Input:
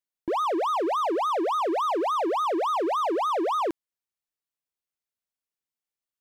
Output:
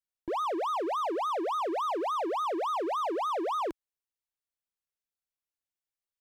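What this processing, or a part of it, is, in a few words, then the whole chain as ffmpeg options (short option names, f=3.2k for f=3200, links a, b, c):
low shelf boost with a cut just above: -af "lowshelf=f=70:g=8,equalizer=f=210:t=o:w=0.9:g=-5.5,volume=-5dB"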